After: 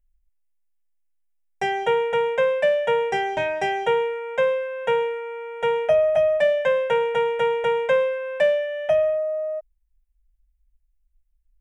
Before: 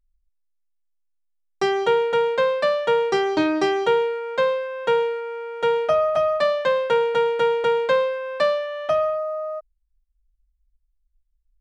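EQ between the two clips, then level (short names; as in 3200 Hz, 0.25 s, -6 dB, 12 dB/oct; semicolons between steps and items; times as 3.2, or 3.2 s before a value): fixed phaser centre 1200 Hz, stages 6; +2.5 dB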